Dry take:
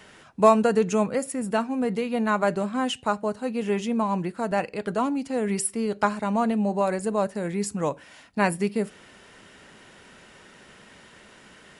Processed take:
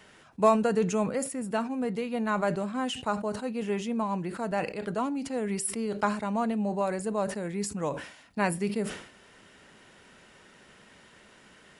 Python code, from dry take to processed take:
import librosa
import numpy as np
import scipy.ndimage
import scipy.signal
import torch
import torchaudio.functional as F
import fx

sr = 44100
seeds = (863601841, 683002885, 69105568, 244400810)

y = fx.sustainer(x, sr, db_per_s=93.0)
y = y * librosa.db_to_amplitude(-5.0)